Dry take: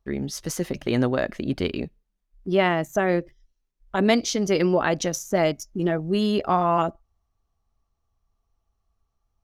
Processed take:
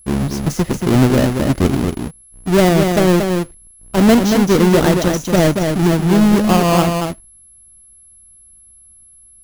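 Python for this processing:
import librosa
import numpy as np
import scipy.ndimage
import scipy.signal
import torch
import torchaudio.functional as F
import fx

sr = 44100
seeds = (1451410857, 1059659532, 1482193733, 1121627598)

p1 = fx.halfwave_hold(x, sr)
p2 = fx.low_shelf(p1, sr, hz=430.0, db=9.5)
p3 = p2 + fx.echo_single(p2, sr, ms=231, db=-5.0, dry=0)
p4 = p3 + 10.0 ** (-42.0 / 20.0) * np.sin(2.0 * np.pi * 11000.0 * np.arange(len(p3)) / sr)
p5 = fx.quant_dither(p4, sr, seeds[0], bits=12, dither='triangular')
y = p5 * librosa.db_to_amplitude(-1.0)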